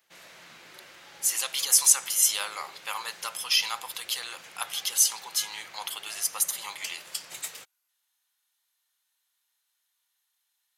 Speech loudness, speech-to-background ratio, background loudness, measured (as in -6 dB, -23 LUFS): -25.5 LUFS, 17.5 dB, -43.0 LUFS